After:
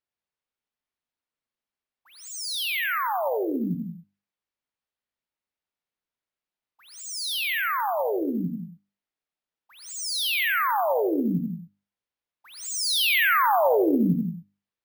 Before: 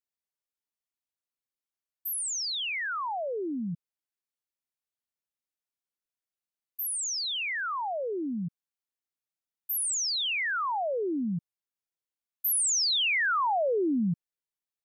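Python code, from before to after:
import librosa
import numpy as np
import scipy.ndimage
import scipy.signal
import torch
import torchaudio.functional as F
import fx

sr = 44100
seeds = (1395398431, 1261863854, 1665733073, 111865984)

y = fx.hum_notches(x, sr, base_hz=50, count=7)
y = fx.peak_eq(y, sr, hz=110.0, db=-14.5, octaves=0.34, at=(8.21, 10.48))
y = fx.quant_float(y, sr, bits=6)
y = fx.air_absorb(y, sr, metres=140.0)
y = y + 10.0 ** (-9.5 / 20.0) * np.pad(y, (int(90 * sr / 1000.0), 0))[:len(y)]
y = fx.rev_gated(y, sr, seeds[0], gate_ms=210, shape='rising', drr_db=6.5)
y = np.repeat(y[::3], 3)[:len(y)]
y = fx.doppler_dist(y, sr, depth_ms=0.12)
y = F.gain(torch.from_numpy(y), 5.5).numpy()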